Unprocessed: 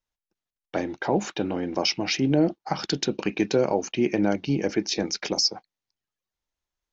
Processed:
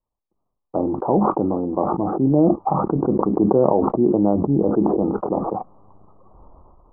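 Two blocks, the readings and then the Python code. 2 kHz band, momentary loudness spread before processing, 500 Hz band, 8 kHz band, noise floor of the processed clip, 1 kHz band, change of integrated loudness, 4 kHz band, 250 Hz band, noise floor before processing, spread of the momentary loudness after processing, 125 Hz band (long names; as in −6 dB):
below −15 dB, 6 LU, +7.0 dB, can't be measured, −79 dBFS, +9.5 dB, +5.5 dB, below −40 dB, +7.0 dB, below −85 dBFS, 7 LU, +7.0 dB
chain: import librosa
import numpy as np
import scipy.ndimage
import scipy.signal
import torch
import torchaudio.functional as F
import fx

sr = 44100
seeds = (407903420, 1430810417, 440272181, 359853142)

y = scipy.signal.sosfilt(scipy.signal.butter(16, 1200.0, 'lowpass', fs=sr, output='sos'), x)
y = fx.sustainer(y, sr, db_per_s=21.0)
y = y * librosa.db_to_amplitude(4.5)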